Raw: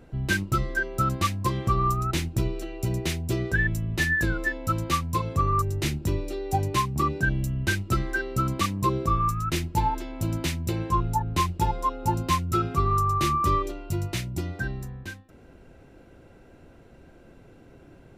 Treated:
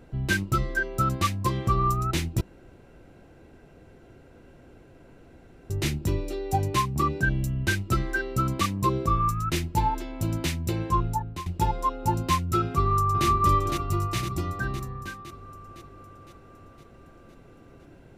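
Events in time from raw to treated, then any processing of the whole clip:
2.41–5.7 room tone
11.04–11.46 fade out, to -18 dB
12.63–13.26 echo throw 0.51 s, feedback 60%, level -4.5 dB

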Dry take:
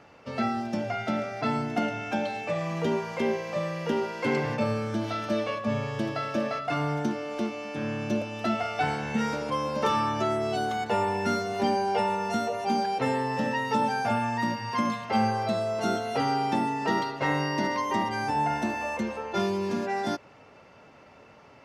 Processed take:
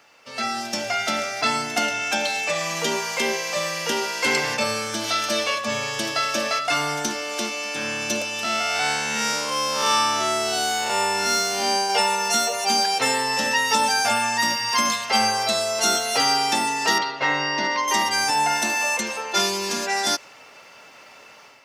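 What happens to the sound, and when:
8.43–11.9 time blur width 0.168 s
16.98–17.88 air absorption 200 m
whole clip: dynamic EQ 6800 Hz, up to +5 dB, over -52 dBFS, Q 0.89; AGC gain up to 8 dB; tilt +4.5 dB/oct; gain -2 dB

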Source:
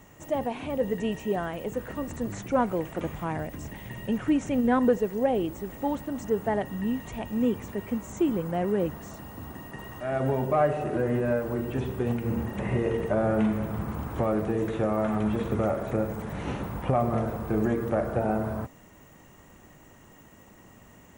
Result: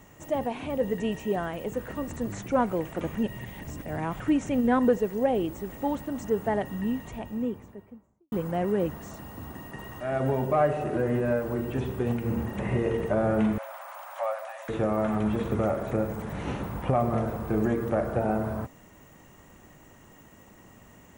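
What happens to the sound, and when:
3.15–4.2 reverse
6.72–8.32 studio fade out
13.58–14.69 brick-wall FIR high-pass 530 Hz

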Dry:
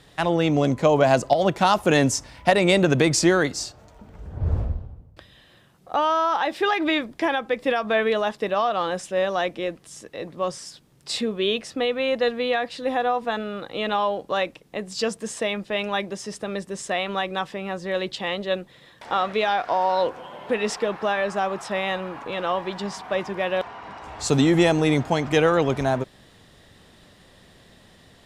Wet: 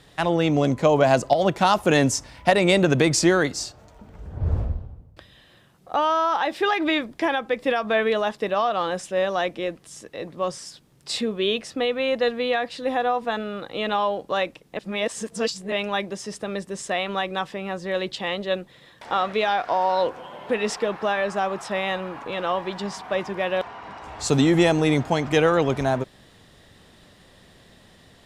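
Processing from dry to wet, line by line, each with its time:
14.77–15.72 reverse

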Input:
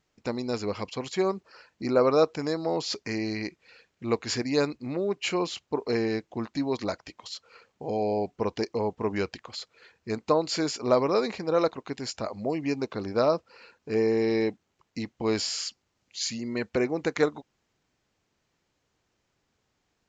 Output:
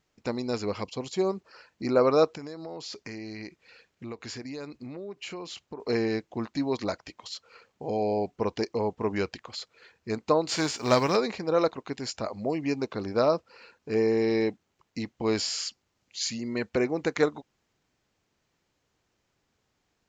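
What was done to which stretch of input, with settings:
0.84–1.32 bell 1700 Hz -9.5 dB 1.2 oct
2.31–5.8 compressor 5:1, threshold -36 dBFS
10.47–11.15 spectral whitening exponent 0.6

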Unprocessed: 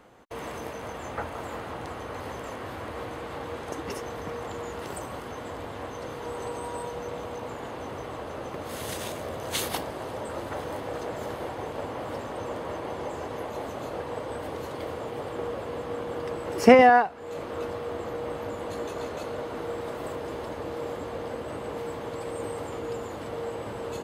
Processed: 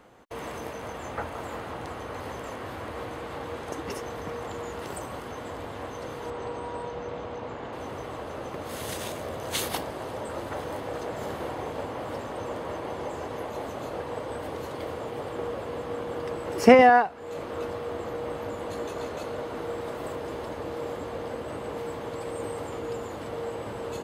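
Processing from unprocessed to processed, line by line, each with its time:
6.3–7.73 air absorption 110 m
11.12–11.83 flutter echo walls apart 8.7 m, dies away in 0.39 s

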